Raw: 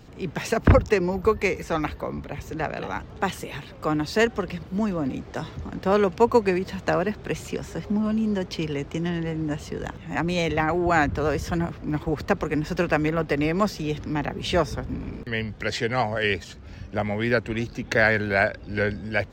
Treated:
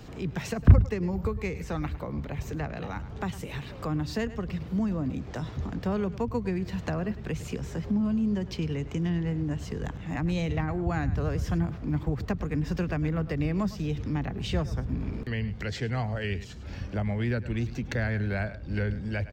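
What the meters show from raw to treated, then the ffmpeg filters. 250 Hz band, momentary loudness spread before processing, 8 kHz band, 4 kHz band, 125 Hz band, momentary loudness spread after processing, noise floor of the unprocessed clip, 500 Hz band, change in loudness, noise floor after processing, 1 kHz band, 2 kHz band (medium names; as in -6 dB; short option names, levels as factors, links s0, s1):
-3.0 dB, 12 LU, -7.5 dB, -8.5 dB, +1.5 dB, 7 LU, -43 dBFS, -10.5 dB, -5.0 dB, -41 dBFS, -11.5 dB, -11.5 dB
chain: -filter_complex "[0:a]aecho=1:1:104:0.133,acrossover=split=190[s0][s1];[s1]acompressor=threshold=0.00708:ratio=2.5[s2];[s0][s2]amix=inputs=2:normalize=0,volume=1.41"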